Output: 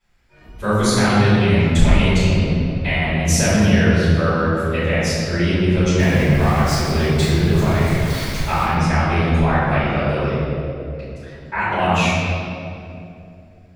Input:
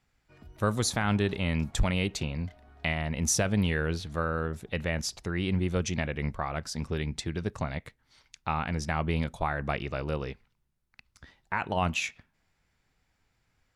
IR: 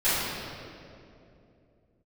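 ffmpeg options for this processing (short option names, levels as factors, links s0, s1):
-filter_complex "[0:a]asettb=1/sr,asplit=3[s0][s1][s2];[s0]atrim=end=5.984[s3];[s1]atrim=start=5.98:end=8.62,asetpts=PTS-STARTPTS,afade=t=in:d=0.004:c=qsin,afade=t=out:st=2.636:d=0.004:c=qsin,aeval=exprs='val(0)+0.5*0.0224*sgn(val(0))':c=same[s4];[s2]atrim=start=8.616[s5];[s3][s4]acrossfade=d=0.004:c1=hsin:c2=qsin[s6];[s6][s5]acrossfade=d=0.004:c1=qsin:c2=hsin[s7];[1:a]atrim=start_sample=2205[s8];[s7][s8]afir=irnorm=-1:irlink=0,volume=0.668"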